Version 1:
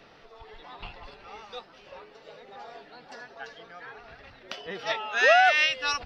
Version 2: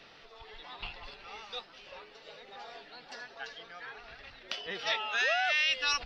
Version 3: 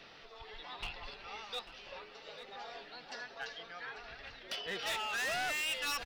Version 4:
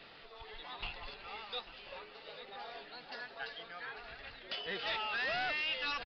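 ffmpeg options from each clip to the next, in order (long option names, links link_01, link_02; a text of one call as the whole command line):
ffmpeg -i in.wav -af "asubboost=boost=2.5:cutoff=50,alimiter=limit=-20dB:level=0:latency=1:release=19,equalizer=frequency=3700:width=0.54:gain=9,volume=-5dB" out.wav
ffmpeg -i in.wav -af "asoftclip=type=hard:threshold=-33.5dB,aecho=1:1:843:0.188" out.wav
ffmpeg -i in.wav -af "aresample=11025,aresample=44100" out.wav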